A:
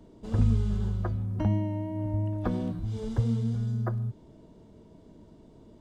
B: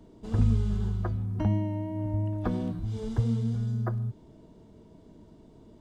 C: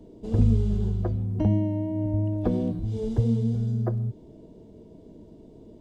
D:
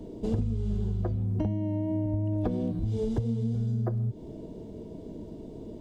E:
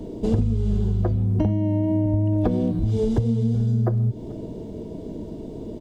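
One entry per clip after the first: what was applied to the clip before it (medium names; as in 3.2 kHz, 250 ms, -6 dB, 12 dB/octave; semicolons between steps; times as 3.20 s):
band-stop 550 Hz, Q 12
FFT filter 150 Hz 0 dB, 510 Hz +5 dB, 1.3 kHz -11 dB, 2.6 kHz -4 dB; trim +3 dB
compression 10:1, threshold -32 dBFS, peak gain reduction 17.5 dB; trim +6.5 dB
delay 437 ms -22.5 dB; trim +7.5 dB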